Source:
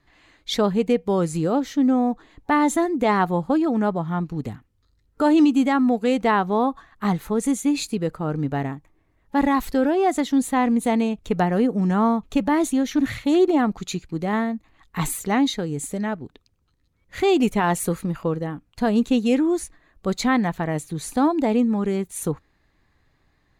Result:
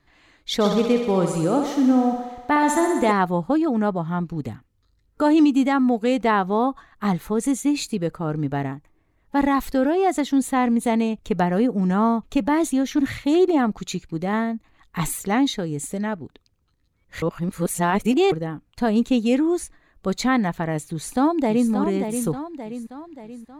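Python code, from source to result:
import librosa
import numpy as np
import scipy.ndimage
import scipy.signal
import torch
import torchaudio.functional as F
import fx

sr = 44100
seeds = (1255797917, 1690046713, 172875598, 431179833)

y = fx.echo_thinned(x, sr, ms=63, feedback_pct=76, hz=230.0, wet_db=-6.0, at=(0.6, 3.11), fade=0.02)
y = fx.echo_throw(y, sr, start_s=20.87, length_s=0.83, ms=580, feedback_pct=50, wet_db=-7.0)
y = fx.edit(y, sr, fx.reverse_span(start_s=17.22, length_s=1.1), tone=tone)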